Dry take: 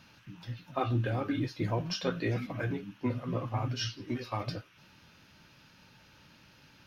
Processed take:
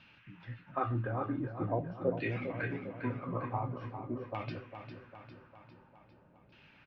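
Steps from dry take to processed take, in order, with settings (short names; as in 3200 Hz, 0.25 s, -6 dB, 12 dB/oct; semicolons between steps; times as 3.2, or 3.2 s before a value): LFO low-pass saw down 0.46 Hz 510–2900 Hz; feedback echo 0.402 s, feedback 56%, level -9 dB; gain -5 dB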